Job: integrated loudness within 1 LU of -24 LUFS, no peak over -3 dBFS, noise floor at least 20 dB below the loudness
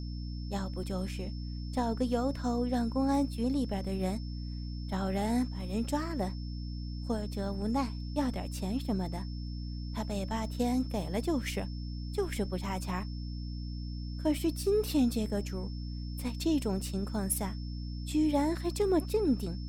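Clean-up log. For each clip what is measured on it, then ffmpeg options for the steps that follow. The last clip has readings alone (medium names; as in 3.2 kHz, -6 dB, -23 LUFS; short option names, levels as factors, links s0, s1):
hum 60 Hz; highest harmonic 300 Hz; hum level -35 dBFS; steady tone 5.3 kHz; tone level -52 dBFS; loudness -33.5 LUFS; peak level -17.0 dBFS; loudness target -24.0 LUFS
-> -af "bandreject=f=60:t=h:w=4,bandreject=f=120:t=h:w=4,bandreject=f=180:t=h:w=4,bandreject=f=240:t=h:w=4,bandreject=f=300:t=h:w=4"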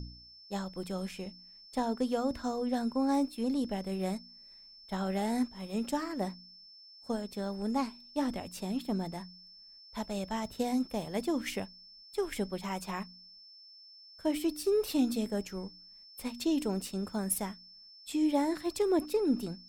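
hum not found; steady tone 5.3 kHz; tone level -52 dBFS
-> -af "bandreject=f=5300:w=30"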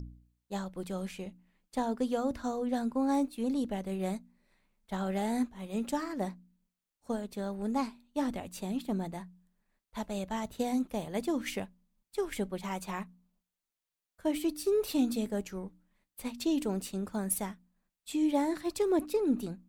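steady tone not found; loudness -34.0 LUFS; peak level -17.5 dBFS; loudness target -24.0 LUFS
-> -af "volume=3.16"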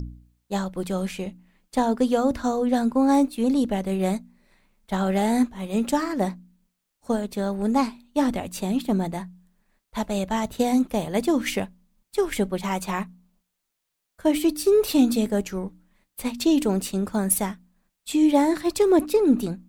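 loudness -24.0 LUFS; peak level -7.5 dBFS; noise floor -79 dBFS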